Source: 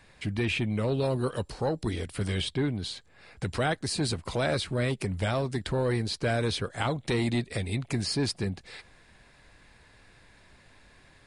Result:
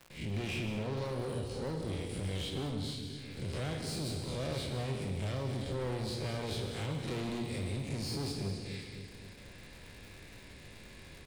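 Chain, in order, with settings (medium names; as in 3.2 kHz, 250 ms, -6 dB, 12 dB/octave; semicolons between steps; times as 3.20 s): spectral blur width 96 ms; gate with hold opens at -49 dBFS; high-order bell 1.1 kHz -8 dB; feedback delay 260 ms, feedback 41%, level -14 dB; saturation -35 dBFS, distortion -7 dB; gated-style reverb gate 230 ms flat, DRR 4.5 dB; crackle 180 per s -50 dBFS; three bands compressed up and down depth 40%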